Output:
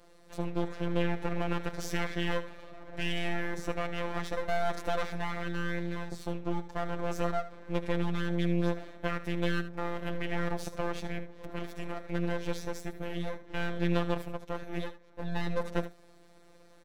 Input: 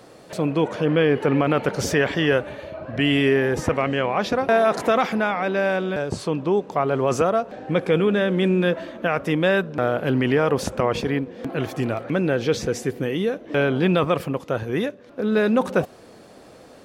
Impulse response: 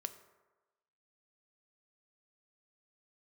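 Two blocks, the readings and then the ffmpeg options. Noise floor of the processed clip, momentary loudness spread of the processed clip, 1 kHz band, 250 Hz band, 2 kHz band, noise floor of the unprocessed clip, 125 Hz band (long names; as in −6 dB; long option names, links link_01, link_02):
−57 dBFS, 8 LU, −12.0 dB, −12.0 dB, −12.0 dB, −47 dBFS, −9.5 dB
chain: -filter_complex "[0:a]highpass=76,aeval=exprs='max(val(0),0)':channel_layout=same,afftfilt=real='hypot(re,im)*cos(PI*b)':imag='0':win_size=1024:overlap=0.75,asplit=2[link_01][link_02];[link_02]aecho=0:1:76:0.211[link_03];[link_01][link_03]amix=inputs=2:normalize=0,volume=-6dB"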